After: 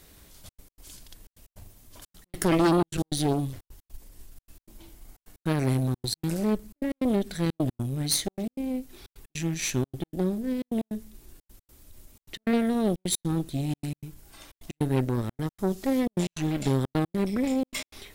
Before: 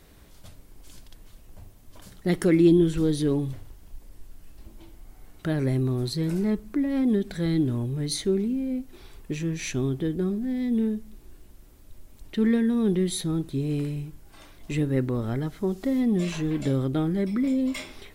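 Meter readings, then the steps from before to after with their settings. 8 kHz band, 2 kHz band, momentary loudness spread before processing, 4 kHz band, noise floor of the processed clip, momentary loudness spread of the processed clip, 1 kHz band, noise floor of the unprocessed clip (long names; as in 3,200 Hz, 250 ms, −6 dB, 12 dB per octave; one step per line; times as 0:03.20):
+5.0 dB, +0.5 dB, 10 LU, +2.5 dB, below −85 dBFS, 11 LU, +8.0 dB, −51 dBFS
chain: harmonic generator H 5 −20 dB, 6 −11 dB, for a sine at −8 dBFS
gate pattern "xxxxx.x." 154 BPM −60 dB
high-shelf EQ 3,300 Hz +9 dB
level −5.5 dB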